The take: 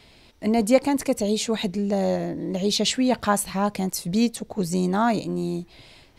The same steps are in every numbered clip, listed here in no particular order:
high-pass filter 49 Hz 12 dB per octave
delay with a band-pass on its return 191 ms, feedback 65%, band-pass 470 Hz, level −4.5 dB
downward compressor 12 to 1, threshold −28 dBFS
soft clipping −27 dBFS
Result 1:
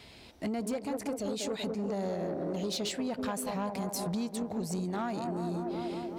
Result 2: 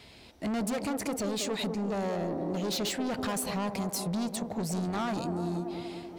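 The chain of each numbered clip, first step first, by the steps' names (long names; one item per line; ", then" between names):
delay with a band-pass on its return, then downward compressor, then soft clipping, then high-pass filter
high-pass filter, then soft clipping, then delay with a band-pass on its return, then downward compressor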